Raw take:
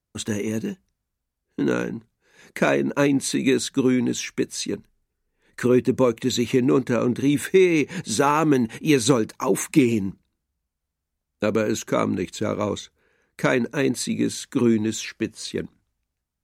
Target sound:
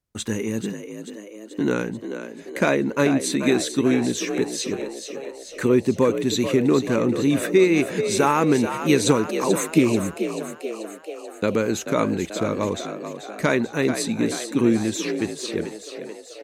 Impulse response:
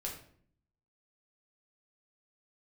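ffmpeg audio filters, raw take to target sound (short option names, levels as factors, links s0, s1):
-filter_complex "[0:a]asplit=9[s0][s1][s2][s3][s4][s5][s6][s7][s8];[s1]adelay=436,afreqshift=51,volume=0.335[s9];[s2]adelay=872,afreqshift=102,volume=0.204[s10];[s3]adelay=1308,afreqshift=153,volume=0.124[s11];[s4]adelay=1744,afreqshift=204,volume=0.0759[s12];[s5]adelay=2180,afreqshift=255,volume=0.0462[s13];[s6]adelay=2616,afreqshift=306,volume=0.0282[s14];[s7]adelay=3052,afreqshift=357,volume=0.0172[s15];[s8]adelay=3488,afreqshift=408,volume=0.0105[s16];[s0][s9][s10][s11][s12][s13][s14][s15][s16]amix=inputs=9:normalize=0"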